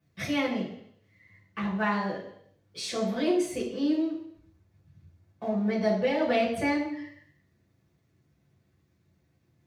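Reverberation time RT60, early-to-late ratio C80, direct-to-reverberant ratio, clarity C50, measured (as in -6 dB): 0.70 s, 9.0 dB, -7.0 dB, 6.0 dB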